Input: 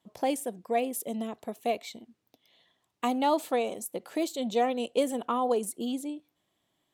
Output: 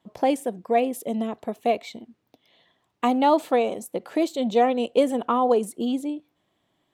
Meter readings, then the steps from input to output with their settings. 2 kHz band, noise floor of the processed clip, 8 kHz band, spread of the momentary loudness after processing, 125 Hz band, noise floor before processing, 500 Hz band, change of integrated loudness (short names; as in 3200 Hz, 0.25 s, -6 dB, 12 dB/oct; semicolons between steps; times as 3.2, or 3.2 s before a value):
+5.0 dB, -73 dBFS, -2.5 dB, 8 LU, n/a, -78 dBFS, +7.0 dB, +6.5 dB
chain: high shelf 4500 Hz -11.5 dB; gain +7 dB